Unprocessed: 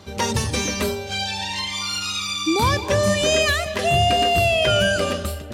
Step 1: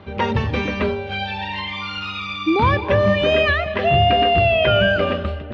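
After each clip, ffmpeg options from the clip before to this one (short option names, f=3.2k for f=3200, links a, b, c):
-af "lowpass=f=2.9k:w=0.5412,lowpass=f=2.9k:w=1.3066,volume=3dB"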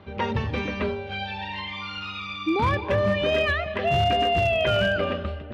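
-af "volume=9.5dB,asoftclip=hard,volume=-9.5dB,volume=-6dB"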